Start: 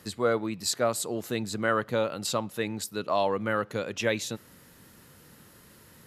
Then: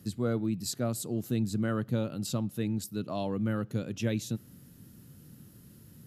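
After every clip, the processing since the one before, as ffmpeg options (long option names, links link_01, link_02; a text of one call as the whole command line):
ffmpeg -i in.wav -af "equalizer=frequency=125:width_type=o:width=1:gain=7,equalizer=frequency=250:width_type=o:width=1:gain=4,equalizer=frequency=500:width_type=o:width=1:gain=-7,equalizer=frequency=1000:width_type=o:width=1:gain=-11,equalizer=frequency=2000:width_type=o:width=1:gain=-10,equalizer=frequency=4000:width_type=o:width=1:gain=-5,equalizer=frequency=8000:width_type=o:width=1:gain=-5" out.wav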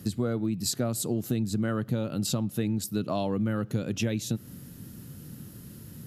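ffmpeg -i in.wav -af "acompressor=threshold=-33dB:ratio=6,volume=8.5dB" out.wav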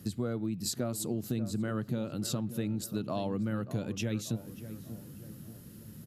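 ffmpeg -i in.wav -filter_complex "[0:a]asplit=2[link_01][link_02];[link_02]adelay=586,lowpass=frequency=1400:poles=1,volume=-12dB,asplit=2[link_03][link_04];[link_04]adelay=586,lowpass=frequency=1400:poles=1,volume=0.52,asplit=2[link_05][link_06];[link_06]adelay=586,lowpass=frequency=1400:poles=1,volume=0.52,asplit=2[link_07][link_08];[link_08]adelay=586,lowpass=frequency=1400:poles=1,volume=0.52,asplit=2[link_09][link_10];[link_10]adelay=586,lowpass=frequency=1400:poles=1,volume=0.52[link_11];[link_01][link_03][link_05][link_07][link_09][link_11]amix=inputs=6:normalize=0,volume=-5dB" out.wav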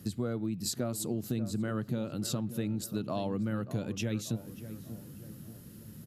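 ffmpeg -i in.wav -af anull out.wav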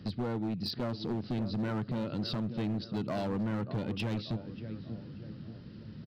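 ffmpeg -i in.wav -af "aresample=11025,aresample=44100,volume=31.5dB,asoftclip=hard,volume=-31.5dB,volume=2.5dB" out.wav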